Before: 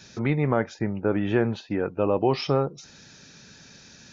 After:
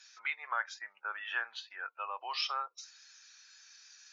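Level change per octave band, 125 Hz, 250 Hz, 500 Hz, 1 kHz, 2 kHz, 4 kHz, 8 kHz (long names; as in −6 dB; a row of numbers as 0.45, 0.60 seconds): below −40 dB, below −40 dB, −29.0 dB, −6.5 dB, −1.0 dB, −1.0 dB, can't be measured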